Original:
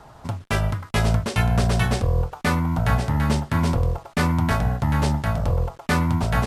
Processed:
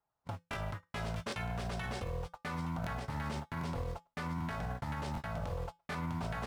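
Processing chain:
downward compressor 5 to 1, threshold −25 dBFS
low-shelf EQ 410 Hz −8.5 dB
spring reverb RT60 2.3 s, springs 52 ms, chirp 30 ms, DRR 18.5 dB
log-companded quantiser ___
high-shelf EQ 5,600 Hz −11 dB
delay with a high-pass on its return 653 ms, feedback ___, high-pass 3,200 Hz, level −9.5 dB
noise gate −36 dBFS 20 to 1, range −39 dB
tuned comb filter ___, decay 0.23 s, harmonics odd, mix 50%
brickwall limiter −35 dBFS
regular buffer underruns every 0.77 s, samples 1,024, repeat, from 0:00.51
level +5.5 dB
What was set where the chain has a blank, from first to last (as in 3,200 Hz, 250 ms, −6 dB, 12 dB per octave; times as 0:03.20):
6 bits, 52%, 170 Hz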